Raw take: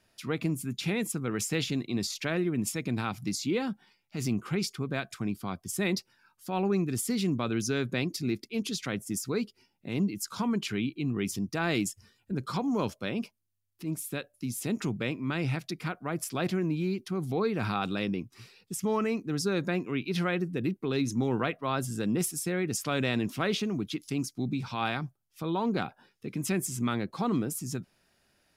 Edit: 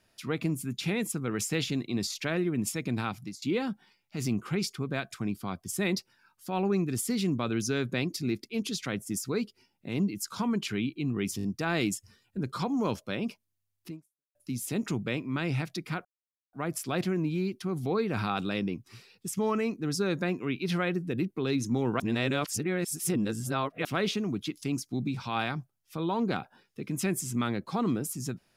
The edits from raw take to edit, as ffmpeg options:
-filter_complex "[0:a]asplit=9[s0][s1][s2][s3][s4][s5][s6][s7][s8];[s0]atrim=end=3.42,asetpts=PTS-STARTPTS,afade=t=out:st=3.07:d=0.35:silence=0.0707946[s9];[s1]atrim=start=3.42:end=11.392,asetpts=PTS-STARTPTS,afade=t=in:d=0.004:c=hsin:silence=0.0707946[s10];[s2]atrim=start=11.368:end=11.392[s11];[s3]atrim=start=11.368:end=11.392[s12];[s4]atrim=start=11.368:end=14.29,asetpts=PTS-STARTPTS,afade=t=out:st=2.472:d=0.45:c=exp[s13];[s5]atrim=start=14.29:end=15.99,asetpts=PTS-STARTPTS,afade=t=in:d=0.004:c=hsin,afade=t=out:st=1.696:d=0.004:c=hsin,apad=pad_dur=0.48[s14];[s6]atrim=start=15.99:end=21.462,asetpts=PTS-STARTPTS,afade=t=in:d=0.004:c=hsin[s15];[s7]atrim=start=21.458:end=23.312,asetpts=PTS-STARTPTS,areverse[s16];[s8]atrim=start=23.308[s17];[s9][s10]concat=n=2:v=0:a=1[s18];[s18][s11]acrossfade=d=0.004:c1=hsin:c2=hsin[s19];[s19][s12]acrossfade=d=0.004:c1=hsin:c2=hsin[s20];[s13][s14][s15]concat=n=3:v=0:a=1[s21];[s20][s21]acrossfade=d=0.004:c1=hsin:c2=hsin[s22];[s22][s16]acrossfade=d=0.004:c1=hsin:c2=hsin[s23];[s23][s17]acrossfade=d=0.004:c1=hsin:c2=hsin"

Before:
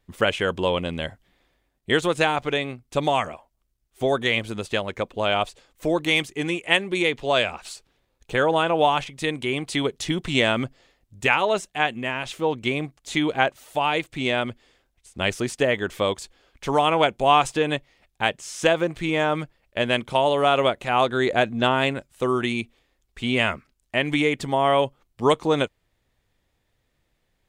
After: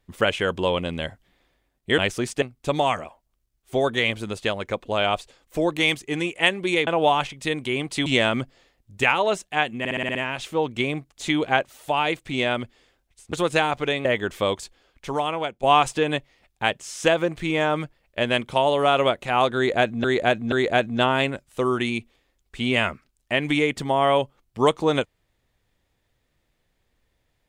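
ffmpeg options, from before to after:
-filter_complex "[0:a]asplit=16[s0][s1][s2][s3][s4][s5][s6][s7][s8][s9][s10][s11][s12][s13][s14][s15];[s0]atrim=end=1.982[s16];[s1]atrim=start=15.198:end=15.642[s17];[s2]atrim=start=2.698:end=7.152[s18];[s3]atrim=start=8.638:end=9.832[s19];[s4]atrim=start=10.288:end=12.082[s20];[s5]atrim=start=12.018:end=12.082[s21];[s6]atrim=start=12.018:end=12.082[s22];[s7]atrim=start=12.018:end=12.082[s23];[s8]atrim=start=12.018:end=12.082[s24];[s9]atrim=start=12.018:end=12.082[s25];[s10]atrim=start=12.018:end=15.202[s26];[s11]atrim=start=1.978:end=2.702[s27];[s12]atrim=start=15.638:end=17.22,asetpts=PTS-STARTPTS,afade=t=out:st=0.572:d=1.01:silence=0.237137[s28];[s13]atrim=start=17.22:end=21.632,asetpts=PTS-STARTPTS,afade=t=in:d=0.004:c=hsin:silence=0.237137[s29];[s14]atrim=start=21.148:end=21.632[s30];[s15]atrim=start=21.148[s31];[s16][s17]acrossfade=d=0.004:c1=hsin:c2=hsin[s32];[s32][s18]acrossfade=d=0.004:c1=hsin:c2=hsin[s33];[s33][s19]acrossfade=d=0.004:c1=hsin:c2=hsin[s34];[s34][s20]acrossfade=d=0.004:c1=hsin:c2=hsin[s35];[s35][s21]acrossfade=d=0.004:c1=hsin:c2=hsin[s36];[s36][s22]acrossfade=d=0.004:c1=hsin:c2=hsin[s37];[s37][s23]acrossfade=d=0.004:c1=hsin:c2=hsin[s38];[s38][s24]acrossfade=d=0.004:c1=hsin:c2=hsin[s39];[s39][s25]acrossfade=d=0.004:c1=hsin:c2=hsin[s40];[s40][s26]acrossfade=d=0.004:c1=hsin:c2=hsin[s41];[s41][s27]acrossfade=d=0.004:c1=hsin:c2=hsin[s42];[s28][s29]concat=n=2:v=0:a=1[s43];[s42][s43]acrossfade=d=0.004:c1=hsin:c2=hsin[s44];[s44][s30]acrossfade=d=0.004:c1=hsin:c2=hsin[s45];[s45][s31]acrossfade=d=0.004:c1=hsin:c2=hsin"

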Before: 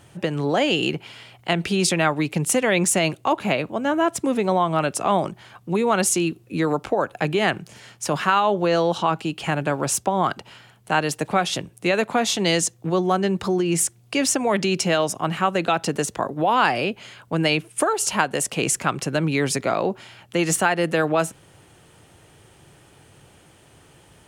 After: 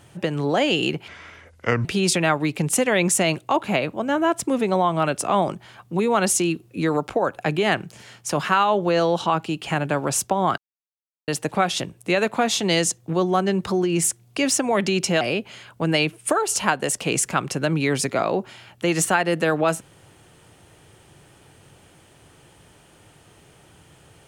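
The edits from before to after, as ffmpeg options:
-filter_complex "[0:a]asplit=6[s0][s1][s2][s3][s4][s5];[s0]atrim=end=1.084[s6];[s1]atrim=start=1.08:end=1.61,asetpts=PTS-STARTPTS,asetrate=30429,aresample=44100[s7];[s2]atrim=start=1.606:end=10.34,asetpts=PTS-STARTPTS,afade=t=out:st=8.73:d=0.004:c=hsin[s8];[s3]atrim=start=10.34:end=11.04,asetpts=PTS-STARTPTS,volume=0[s9];[s4]atrim=start=11.04:end=14.972,asetpts=PTS-STARTPTS,afade=t=in:d=0.004:c=hsin[s10];[s5]atrim=start=16.718[s11];[s6][s7]acrossfade=d=0.004:c1=hsin:c2=hsin[s12];[s8][s9][s10]concat=n=3:v=0:a=1[s13];[s12][s13]acrossfade=d=0.004:c1=hsin:c2=hsin[s14];[s14][s11]acrossfade=d=0.004:c1=hsin:c2=hsin"

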